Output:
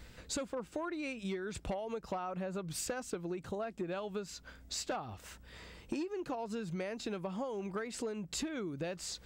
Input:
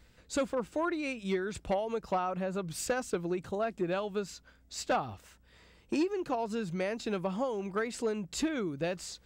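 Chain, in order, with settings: compression 5:1, threshold -45 dBFS, peak gain reduction 17 dB; trim +7.5 dB

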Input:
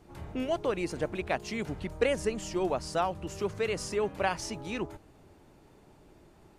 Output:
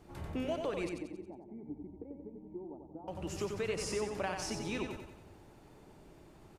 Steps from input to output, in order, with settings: compression, threshold -32 dBFS, peak gain reduction 11.5 dB; 0.89–3.08 s: cascade formant filter u; feedback delay 91 ms, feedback 49%, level -5.5 dB; trim -1 dB

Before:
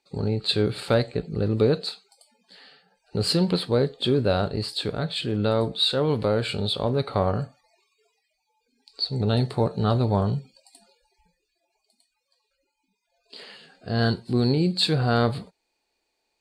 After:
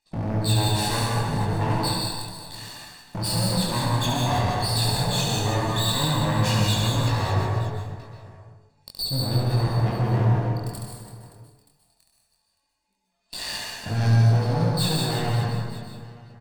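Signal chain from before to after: comb filter that takes the minimum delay 1.1 ms; spectral gate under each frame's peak -25 dB strong; treble shelf 5.7 kHz +8.5 dB; in parallel at +1 dB: gain riding within 3 dB 0.5 s; on the sum: waveshaping leveller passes 3; compression 4:1, threshold -21 dBFS, peak gain reduction 12 dB; hard clipper -20 dBFS, distortion -15 dB; chorus 0.14 Hz, delay 18.5 ms, depth 6.7 ms; reverse bouncing-ball echo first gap 70 ms, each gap 1.5×, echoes 5; plate-style reverb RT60 1 s, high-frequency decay 0.55×, pre-delay 115 ms, DRR 0 dB; trim -2.5 dB

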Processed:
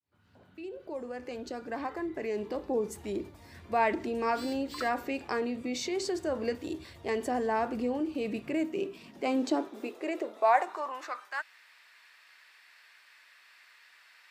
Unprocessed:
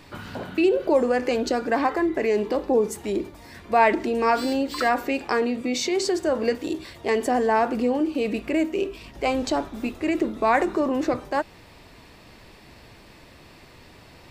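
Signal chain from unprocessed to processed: fade-in on the opening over 3.13 s; high-pass sweep 77 Hz -> 1.6 kHz, 8.00–11.45 s; trim -9 dB

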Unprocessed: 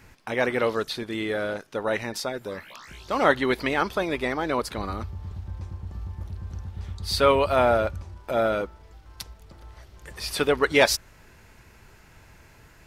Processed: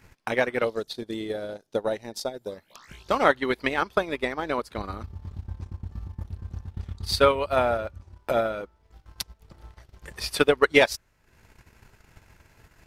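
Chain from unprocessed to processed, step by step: transient shaper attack +10 dB, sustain -10 dB; 0.64–2.76 s: high-order bell 1.7 kHz -8.5 dB; trim -4.5 dB

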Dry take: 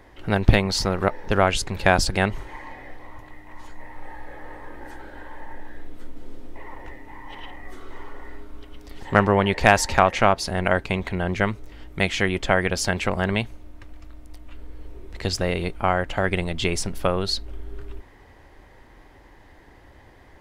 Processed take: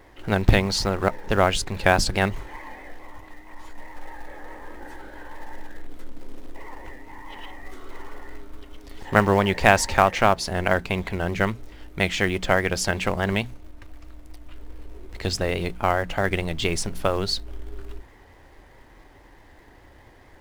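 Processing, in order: hum notches 60/120/180/240 Hz; vibrato 4.7 Hz 52 cents; in parallel at -11.5 dB: companded quantiser 4-bit; on the sum: trim -2.5 dB

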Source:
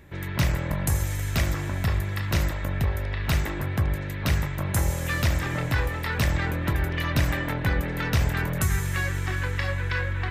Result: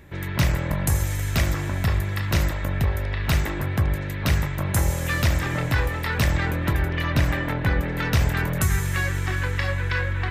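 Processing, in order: 6.82–7.98 s: treble shelf 4.6 kHz -6 dB; trim +2.5 dB

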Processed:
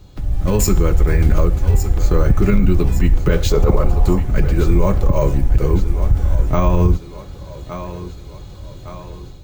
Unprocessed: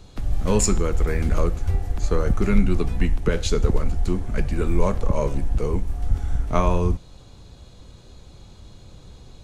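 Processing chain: bass shelf 340 Hz +5 dB; comb of notches 230 Hz; thinning echo 1162 ms, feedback 51%, high-pass 200 Hz, level -13.5 dB; careless resampling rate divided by 2×, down none, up hold; 3.50–4.20 s: high-order bell 730 Hz +8.5 dB; peak limiter -10.5 dBFS, peak gain reduction 8 dB; level rider gain up to 6.5 dB

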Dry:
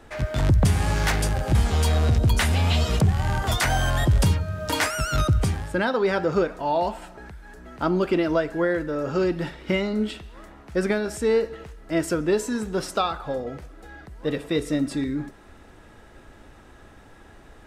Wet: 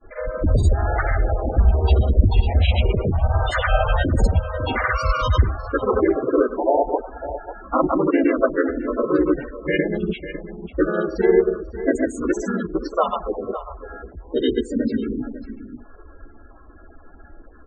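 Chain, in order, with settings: granulator, pitch spread up and down by 0 st; peaking EQ 160 Hz -15 dB 0.84 oct; on a send: delay 547 ms -11.5 dB; on the sum: loudest bins only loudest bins 16; harmony voices -4 st -3 dB, -3 st 0 dB; trim +3.5 dB

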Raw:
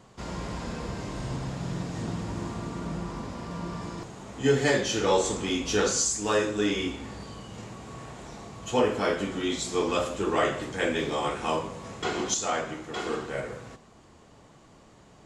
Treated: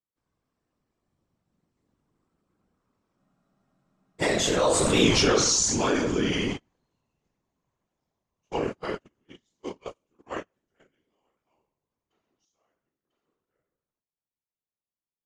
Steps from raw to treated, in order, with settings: Doppler pass-by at 5.07 s, 32 m/s, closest 1.9 m; gate -58 dBFS, range -56 dB; whisper effect; spectral freeze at 3.21 s, 1.00 s; level flattener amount 70%; trim +9 dB

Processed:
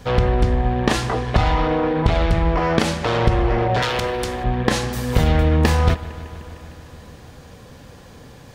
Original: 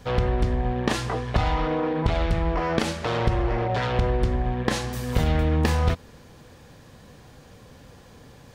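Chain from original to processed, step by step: 3.82–4.44 s: RIAA curve recording; bucket-brigade echo 152 ms, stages 4096, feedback 77%, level -18 dB; trim +5.5 dB

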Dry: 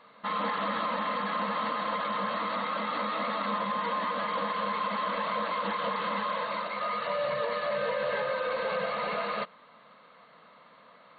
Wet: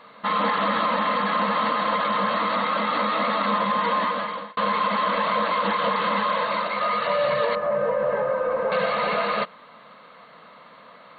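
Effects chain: 4.01–4.57 s: fade out; 7.55–8.72 s: low-pass 1.1 kHz 12 dB/octave; trim +8 dB

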